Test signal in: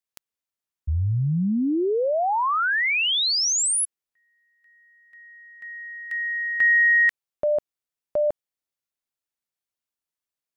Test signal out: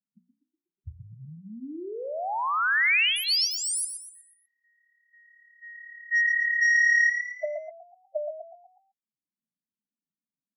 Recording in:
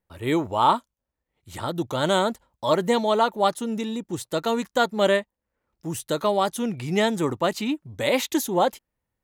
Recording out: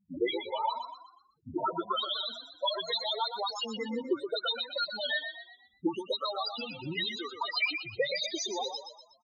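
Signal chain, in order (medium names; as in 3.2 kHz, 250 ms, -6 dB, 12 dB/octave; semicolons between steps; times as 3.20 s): reverb removal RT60 0.75 s; auto-wah 200–4900 Hz, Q 2.8, up, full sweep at -21 dBFS; treble shelf 2.6 kHz +2.5 dB; in parallel at -7 dB: sine folder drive 19 dB, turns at -14 dBFS; on the sum: loudest bins only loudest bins 4; hum notches 60/120/180/240 Hz; on a send: frequency-shifting echo 122 ms, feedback 42%, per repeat +36 Hz, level -8 dB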